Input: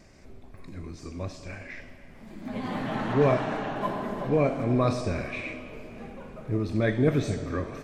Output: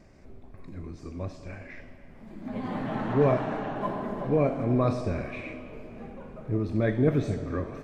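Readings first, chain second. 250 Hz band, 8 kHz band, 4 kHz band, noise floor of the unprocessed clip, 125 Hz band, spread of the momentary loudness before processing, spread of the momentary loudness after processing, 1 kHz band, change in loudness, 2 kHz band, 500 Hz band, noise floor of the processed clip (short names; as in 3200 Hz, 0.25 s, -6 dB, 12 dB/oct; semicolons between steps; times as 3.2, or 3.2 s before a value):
0.0 dB, n/a, -7.0 dB, -49 dBFS, 0.0 dB, 19 LU, 19 LU, -1.5 dB, -0.5 dB, -4.0 dB, -0.5 dB, -50 dBFS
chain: high shelf 2100 Hz -9.5 dB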